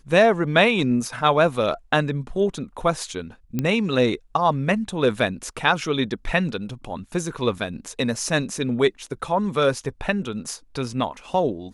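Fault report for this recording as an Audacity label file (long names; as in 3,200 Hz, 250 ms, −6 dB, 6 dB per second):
3.590000	3.590000	click −11 dBFS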